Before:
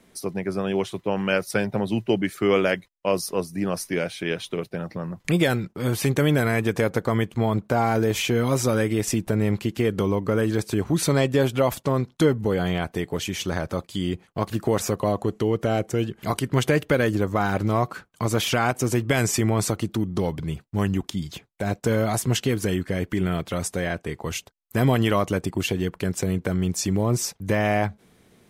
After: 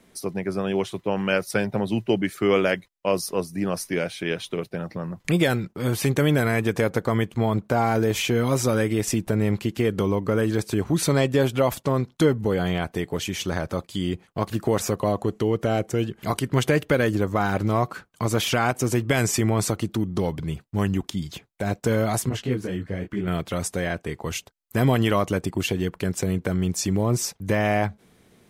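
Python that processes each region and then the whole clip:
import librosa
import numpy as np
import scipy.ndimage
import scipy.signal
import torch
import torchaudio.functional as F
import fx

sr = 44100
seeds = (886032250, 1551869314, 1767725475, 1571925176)

y = fx.chain(x, sr, fx.peak_eq(hz=13000.0, db=-11.0, octaves=2.2),
    fx.detune_double(cents=29), at=(22.29, 23.28))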